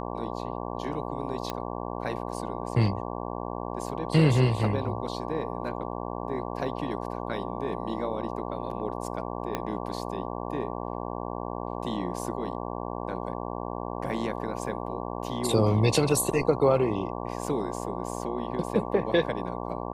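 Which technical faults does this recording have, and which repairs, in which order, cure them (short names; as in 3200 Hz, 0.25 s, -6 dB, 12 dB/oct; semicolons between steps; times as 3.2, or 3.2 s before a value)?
buzz 60 Hz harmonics 19 -34 dBFS
1.5 pop -16 dBFS
9.55 pop -14 dBFS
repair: de-click; de-hum 60 Hz, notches 19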